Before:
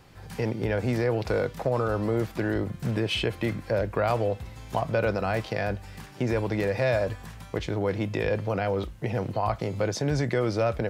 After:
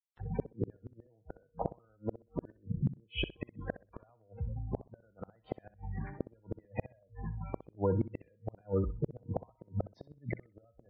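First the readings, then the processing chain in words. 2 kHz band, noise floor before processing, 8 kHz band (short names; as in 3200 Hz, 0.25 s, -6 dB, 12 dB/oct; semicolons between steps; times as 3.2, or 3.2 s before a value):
-17.5 dB, -46 dBFS, under -35 dB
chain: gate with hold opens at -34 dBFS; in parallel at 0 dB: compressor 16:1, threshold -32 dBFS, peak gain reduction 13.5 dB; on the sum: air absorption 190 m; wow and flutter 28 cents; bit-crush 9-bit; dynamic EQ 440 Hz, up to -5 dB, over -36 dBFS, Q 2.4; spectral gate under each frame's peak -15 dB strong; resonator 470 Hz, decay 0.55 s, mix 70%; flipped gate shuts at -28 dBFS, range -39 dB; flutter echo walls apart 10.8 m, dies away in 0.25 s; gain +8.5 dB; AC-3 48 kbps 44100 Hz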